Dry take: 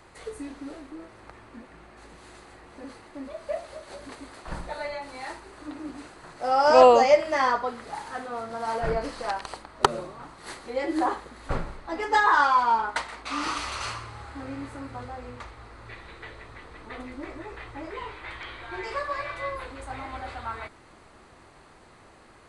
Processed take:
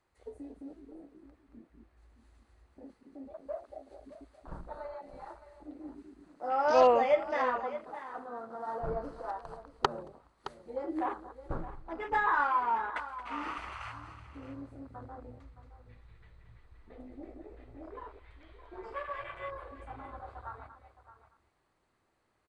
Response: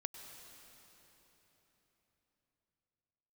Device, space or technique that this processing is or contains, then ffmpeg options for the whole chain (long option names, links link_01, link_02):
ducked delay: -filter_complex "[0:a]asplit=3[link_01][link_02][link_03];[link_02]adelay=226,volume=-5dB[link_04];[link_03]apad=whole_len=1001351[link_05];[link_04][link_05]sidechaincompress=threshold=-40dB:ratio=5:attack=8.2:release=366[link_06];[link_01][link_06]amix=inputs=2:normalize=0,afwtdn=0.0224,aecho=1:1:617:0.2,volume=-8dB"